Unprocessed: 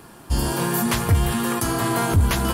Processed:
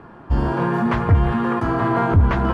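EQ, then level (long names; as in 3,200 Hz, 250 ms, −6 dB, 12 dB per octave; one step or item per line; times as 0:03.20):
Chebyshev low-pass filter 1,400 Hz, order 2
+4.0 dB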